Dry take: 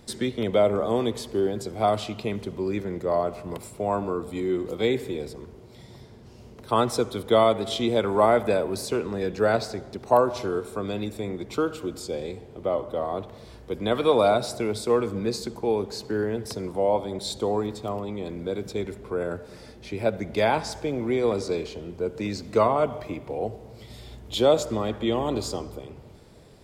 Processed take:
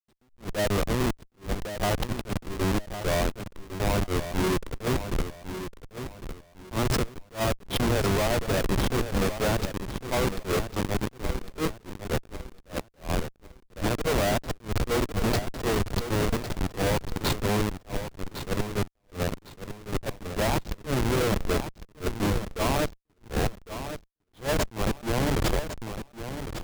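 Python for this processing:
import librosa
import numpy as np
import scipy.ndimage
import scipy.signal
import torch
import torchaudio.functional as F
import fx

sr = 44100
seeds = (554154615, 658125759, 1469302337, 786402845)

p1 = fx.dereverb_blind(x, sr, rt60_s=1.2)
p2 = scipy.signal.sosfilt(scipy.signal.butter(4, 95.0, 'highpass', fs=sr, output='sos'), p1)
p3 = fx.hum_notches(p2, sr, base_hz=60, count=2)
p4 = fx.over_compress(p3, sr, threshold_db=-28.0, ratio=-0.5)
p5 = p3 + F.gain(torch.from_numpy(p4), 1.0).numpy()
p6 = fx.schmitt(p5, sr, flips_db=-19.5)
p7 = fx.echo_feedback(p6, sr, ms=1105, feedback_pct=28, wet_db=-10.0)
y = fx.attack_slew(p7, sr, db_per_s=250.0)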